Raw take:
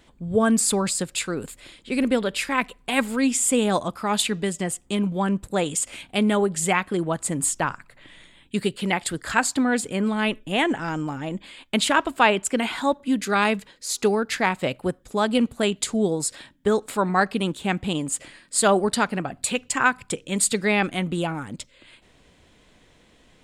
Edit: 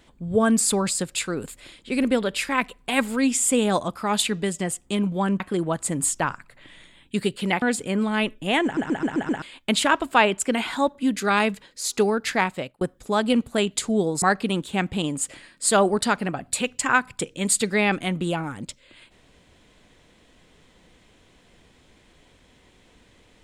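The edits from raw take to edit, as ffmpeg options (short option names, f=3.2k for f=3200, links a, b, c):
-filter_complex "[0:a]asplit=11[a][b][c][d][e][f][g][h][i][j][k];[a]atrim=end=5.402[l];[b]atrim=start=6.798:end=9.022[m];[c]atrim=start=9.668:end=10.822[n];[d]atrim=start=10.688:end=10.822[o];[e]atrim=start=10.688:end=10.822[p];[f]atrim=start=10.688:end=10.822[q];[g]atrim=start=10.688:end=10.822[r];[h]atrim=start=10.688:end=10.822[s];[i]atrim=start=11.468:end=14.86,asetpts=PTS-STARTPTS,afade=t=out:st=3.012:d=0.38[t];[j]atrim=start=14.86:end=16.272,asetpts=PTS-STARTPTS,afade=t=in:d=0.004:c=hsin[u];[k]atrim=start=17.128[v];[l][m]acrossfade=d=0.004:c1=hsin:c2=hsin[w];[w][n]acrossfade=d=0.004:c1=hsin:c2=hsin[x];[x][o]acrossfade=d=0.004:c1=hsin:c2=hsin[y];[y][p]acrossfade=d=0.004:c1=hsin:c2=hsin[z];[z][q]acrossfade=d=0.004:c1=hsin:c2=hsin[aa];[aa][r]acrossfade=d=0.004:c1=hsin:c2=hsin[ab];[ab][s]acrossfade=d=0.004:c1=hsin:c2=hsin[ac];[t][u]concat=n=2:v=0:a=1[ad];[ac][ad]acrossfade=d=0.004:c1=hsin:c2=hsin[ae];[ae][v]acrossfade=d=0.004:c1=hsin:c2=hsin"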